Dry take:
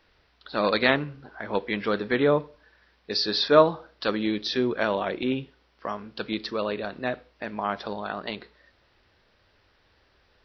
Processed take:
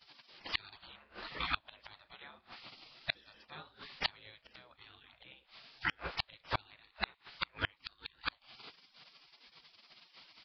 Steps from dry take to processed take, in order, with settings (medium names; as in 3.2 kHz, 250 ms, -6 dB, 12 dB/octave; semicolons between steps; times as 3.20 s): spectral gate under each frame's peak -20 dB weak; resampled via 11.025 kHz; inverted gate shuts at -36 dBFS, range -35 dB; trim +18 dB